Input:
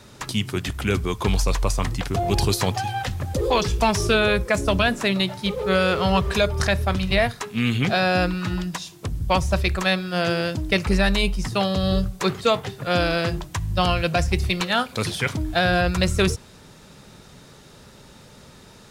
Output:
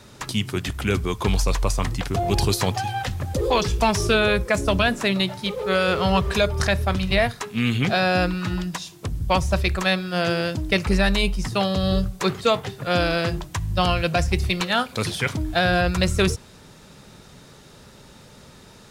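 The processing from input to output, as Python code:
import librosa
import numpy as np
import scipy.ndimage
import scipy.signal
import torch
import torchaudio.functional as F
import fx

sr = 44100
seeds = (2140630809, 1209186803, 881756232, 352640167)

y = fx.low_shelf(x, sr, hz=160.0, db=-9.5, at=(5.44, 5.88))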